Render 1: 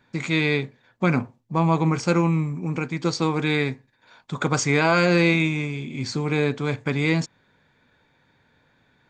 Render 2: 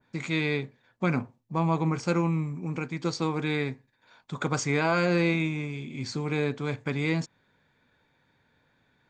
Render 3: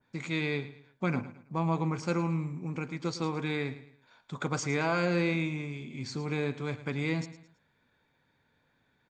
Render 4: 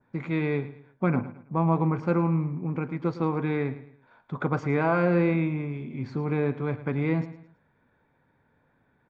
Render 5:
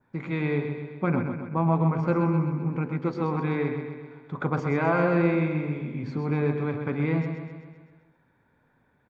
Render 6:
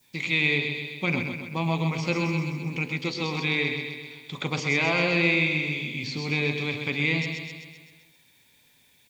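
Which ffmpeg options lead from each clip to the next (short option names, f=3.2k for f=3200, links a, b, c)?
-af "adynamicequalizer=threshold=0.0251:dfrequency=1800:dqfactor=0.7:tfrequency=1800:tqfactor=0.7:attack=5:release=100:ratio=0.375:range=2:mode=cutabove:tftype=highshelf,volume=-5.5dB"
-af "aecho=1:1:109|218|327:0.188|0.0678|0.0244,volume=-4dB"
-af "lowpass=1.5k,volume=6dB"
-filter_complex "[0:a]bandreject=f=45.37:t=h:w=4,bandreject=f=90.74:t=h:w=4,bandreject=f=136.11:t=h:w=4,bandreject=f=181.48:t=h:w=4,bandreject=f=226.85:t=h:w=4,bandreject=f=272.22:t=h:w=4,bandreject=f=317.59:t=h:w=4,bandreject=f=362.96:t=h:w=4,bandreject=f=408.33:t=h:w=4,bandreject=f=453.7:t=h:w=4,bandreject=f=499.07:t=h:w=4,bandreject=f=544.44:t=h:w=4,bandreject=f=589.81:t=h:w=4,bandreject=f=635.18:t=h:w=4,bandreject=f=680.55:t=h:w=4,bandreject=f=725.92:t=h:w=4,asplit=2[a][b];[b]aecho=0:1:129|258|387|516|645|774|903:0.447|0.255|0.145|0.0827|0.0472|0.0269|0.0153[c];[a][c]amix=inputs=2:normalize=0"
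-filter_complex "[0:a]aexciter=amount=13.4:drive=9.4:freq=2.4k,acrossover=split=3300[a][b];[b]acompressor=threshold=-34dB:ratio=4:attack=1:release=60[c];[a][c]amix=inputs=2:normalize=0,volume=-3.5dB"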